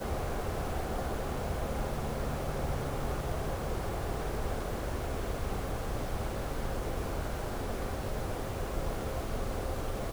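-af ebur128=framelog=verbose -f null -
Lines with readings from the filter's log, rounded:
Integrated loudness:
  I:         -36.1 LUFS
  Threshold: -46.1 LUFS
Loudness range:
  LRA:         1.2 LU
  Threshold: -56.1 LUFS
  LRA low:   -36.6 LUFS
  LRA high:  -35.4 LUFS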